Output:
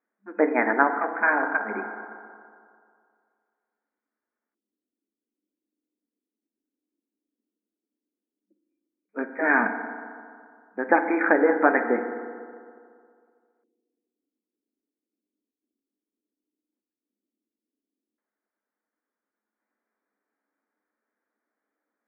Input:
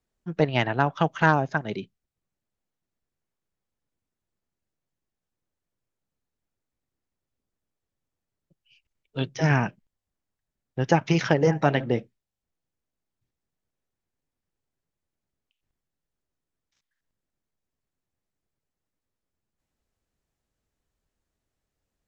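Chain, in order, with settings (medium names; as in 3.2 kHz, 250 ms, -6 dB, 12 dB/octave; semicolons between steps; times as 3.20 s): FDN reverb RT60 2.2 s, low-frequency decay 0.9×, high-frequency decay 0.35×, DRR 6.5 dB; 1.00–1.75 s: valve stage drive 14 dB, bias 0.65; LFO low-pass square 0.11 Hz 320–1600 Hz; FFT band-pass 200–2500 Hz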